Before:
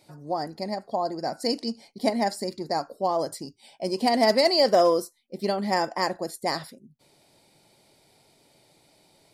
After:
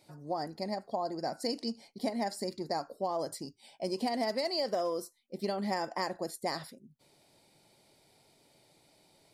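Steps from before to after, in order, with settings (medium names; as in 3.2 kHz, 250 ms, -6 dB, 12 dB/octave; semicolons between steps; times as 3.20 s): compression 10:1, threshold -24 dBFS, peak gain reduction 9.5 dB; trim -4.5 dB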